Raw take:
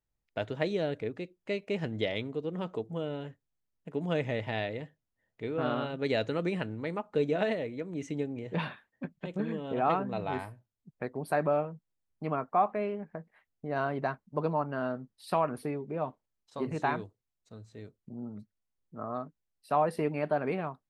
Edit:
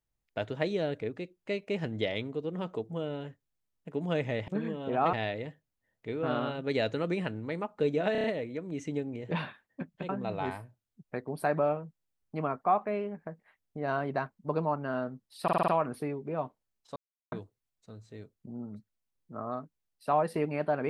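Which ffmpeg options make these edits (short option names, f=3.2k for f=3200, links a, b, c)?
-filter_complex "[0:a]asplit=15[a][b][c][d][e][f][g][h][i][j][k][l][m][n][o];[a]atrim=end=4.482[p];[b]atrim=start=9.318:end=9.972[q];[c]atrim=start=4.478:end=7.502[r];[d]atrim=start=7.468:end=7.502[s];[e]atrim=start=7.468:end=7.502[t];[f]atrim=start=7.468:end=7.502[u];[g]atrim=start=7.468:end=9.322[v];[h]atrim=start=9.968:end=15.362[w];[i]atrim=start=15.308:end=15.362[x];[j]atrim=start=15.308:end=15.362[y];[k]atrim=start=15.308:end=15.362[z];[l]atrim=start=15.308:end=15.362[aa];[m]atrim=start=15.308:end=16.59,asetpts=PTS-STARTPTS,afade=t=out:st=1.278:d=0.004:c=hsin[ab];[n]atrim=start=16.59:end=16.95,asetpts=PTS-STARTPTS,volume=0[ac];[o]atrim=start=16.95,asetpts=PTS-STARTPTS,afade=t=in:d=0.004:c=hsin[ad];[p][q]acrossfade=d=0.004:c1=hsin:c2=hsin[ae];[ae][r]acrossfade=d=0.004:c1=hsin:c2=hsin[af];[af][s]acrossfade=d=0.004:c1=hsin:c2=hsin[ag];[ag][t]acrossfade=d=0.004:c1=hsin:c2=hsin[ah];[ah][u]acrossfade=d=0.004:c1=hsin:c2=hsin[ai];[ai][v]acrossfade=d=0.004:c1=hsin:c2=hsin[aj];[aj][w]acrossfade=d=0.004:c1=hsin:c2=hsin[ak];[ak][x]acrossfade=d=0.004:c1=hsin:c2=hsin[al];[al][y]acrossfade=d=0.004:c1=hsin:c2=hsin[am];[am][z]acrossfade=d=0.004:c1=hsin:c2=hsin[an];[an][aa]acrossfade=d=0.004:c1=hsin:c2=hsin[ao];[ab][ac][ad]concat=n=3:v=0:a=1[ap];[ao][ap]acrossfade=d=0.004:c1=hsin:c2=hsin"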